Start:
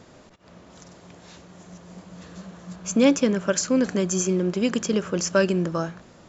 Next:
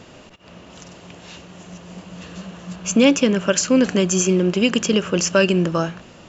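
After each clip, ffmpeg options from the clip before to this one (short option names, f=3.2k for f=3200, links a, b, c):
-filter_complex "[0:a]equalizer=f=2.8k:w=4.3:g=11,asplit=2[a][b];[b]alimiter=limit=-12.5dB:level=0:latency=1:release=191,volume=-1dB[c];[a][c]amix=inputs=2:normalize=0"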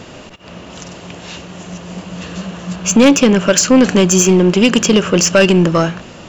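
-af "acontrast=86,asoftclip=type=tanh:threshold=-1.5dB,volume=2dB"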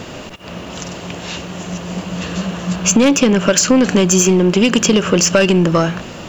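-af "acompressor=threshold=-14dB:ratio=4,acrusher=bits=9:mix=0:aa=0.000001,volume=4dB"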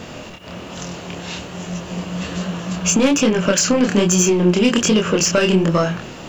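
-af "flanger=delay=22.5:depth=6.1:speed=1.2"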